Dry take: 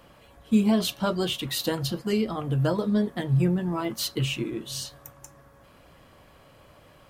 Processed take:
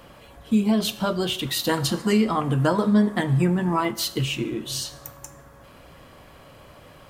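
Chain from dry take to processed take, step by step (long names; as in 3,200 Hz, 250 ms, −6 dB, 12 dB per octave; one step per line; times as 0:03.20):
0:01.69–0:03.91: octave-band graphic EQ 250/1,000/2,000/8,000 Hz +6/+9/+6/+9 dB
downward compressor 1.5 to 1, threshold −34 dBFS, peak gain reduction 7 dB
dense smooth reverb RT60 0.78 s, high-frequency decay 1×, DRR 13 dB
level +6 dB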